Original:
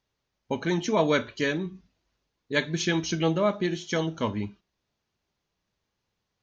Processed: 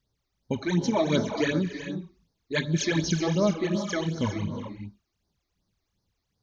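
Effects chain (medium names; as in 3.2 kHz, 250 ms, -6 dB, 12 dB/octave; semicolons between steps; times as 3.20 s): tone controls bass +6 dB, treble +4 dB; gated-style reverb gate 440 ms rising, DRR 6.5 dB; phase shifter stages 12, 2.7 Hz, lowest notch 150–2800 Hz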